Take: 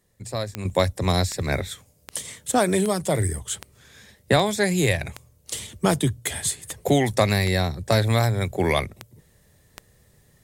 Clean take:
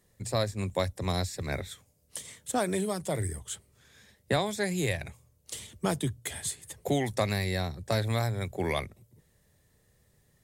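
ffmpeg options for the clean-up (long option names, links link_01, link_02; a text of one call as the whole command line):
ffmpeg -i in.wav -af "adeclick=threshold=4,asetnsamples=nb_out_samples=441:pad=0,asendcmd='0.65 volume volume -8.5dB',volume=0dB" out.wav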